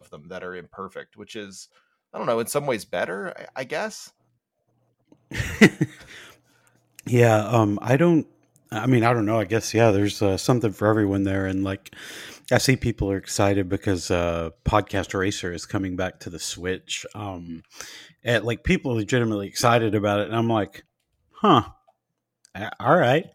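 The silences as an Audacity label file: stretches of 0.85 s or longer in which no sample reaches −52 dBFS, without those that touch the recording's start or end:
4.100000	5.120000	silence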